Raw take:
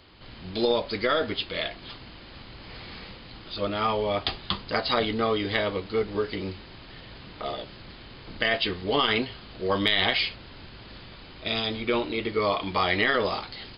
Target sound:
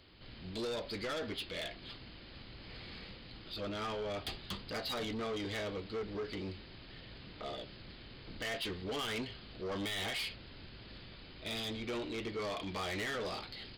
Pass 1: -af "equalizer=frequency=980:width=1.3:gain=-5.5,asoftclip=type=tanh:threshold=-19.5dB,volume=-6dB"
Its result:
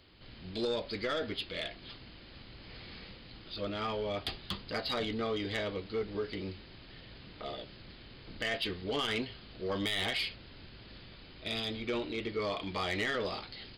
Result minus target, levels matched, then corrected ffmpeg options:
soft clipping: distortion −8 dB
-af "equalizer=frequency=980:width=1.3:gain=-5.5,asoftclip=type=tanh:threshold=-28.5dB,volume=-6dB"

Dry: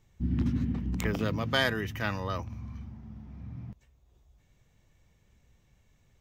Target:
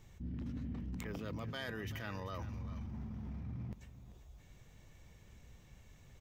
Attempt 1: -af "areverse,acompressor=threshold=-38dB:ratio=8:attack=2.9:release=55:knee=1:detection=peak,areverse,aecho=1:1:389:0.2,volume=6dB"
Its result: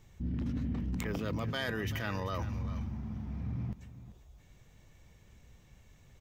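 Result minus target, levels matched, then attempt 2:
downward compressor: peak gain reduction −7.5 dB
-af "areverse,acompressor=threshold=-46.5dB:ratio=8:attack=2.9:release=55:knee=1:detection=peak,areverse,aecho=1:1:389:0.2,volume=6dB"

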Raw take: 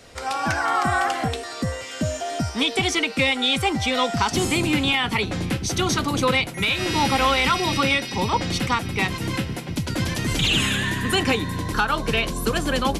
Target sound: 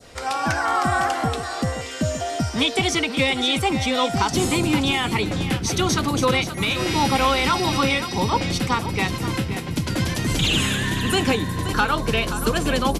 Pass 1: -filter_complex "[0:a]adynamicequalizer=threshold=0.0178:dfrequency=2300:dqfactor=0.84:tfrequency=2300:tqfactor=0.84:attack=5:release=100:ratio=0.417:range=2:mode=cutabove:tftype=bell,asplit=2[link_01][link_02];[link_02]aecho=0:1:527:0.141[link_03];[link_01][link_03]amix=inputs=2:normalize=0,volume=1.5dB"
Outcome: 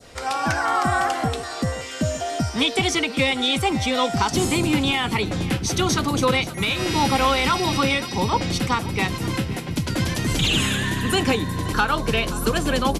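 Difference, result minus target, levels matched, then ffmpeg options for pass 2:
echo-to-direct −6 dB
-filter_complex "[0:a]adynamicequalizer=threshold=0.0178:dfrequency=2300:dqfactor=0.84:tfrequency=2300:tqfactor=0.84:attack=5:release=100:ratio=0.417:range=2:mode=cutabove:tftype=bell,asplit=2[link_01][link_02];[link_02]aecho=0:1:527:0.282[link_03];[link_01][link_03]amix=inputs=2:normalize=0,volume=1.5dB"

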